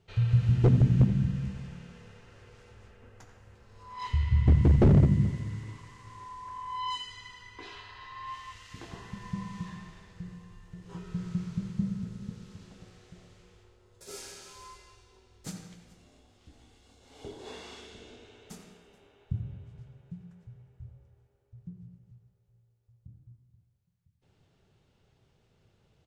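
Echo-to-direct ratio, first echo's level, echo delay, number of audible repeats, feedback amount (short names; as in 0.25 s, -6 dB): -15.5 dB, -16.0 dB, 87 ms, 2, no steady repeat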